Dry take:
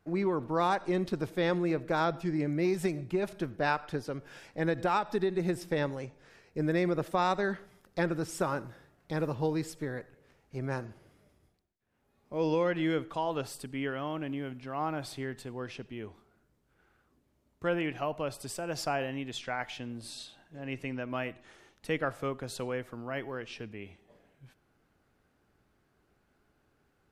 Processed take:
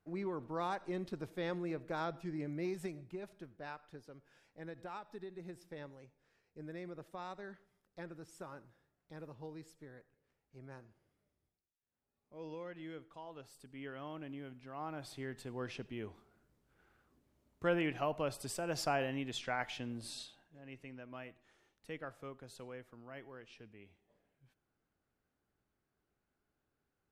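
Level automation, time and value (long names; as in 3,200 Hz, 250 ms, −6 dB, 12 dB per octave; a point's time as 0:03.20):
0:02.68 −10 dB
0:03.54 −18 dB
0:13.42 −18 dB
0:14.03 −10.5 dB
0:14.85 −10.5 dB
0:15.65 −2.5 dB
0:20.18 −2.5 dB
0:20.62 −14 dB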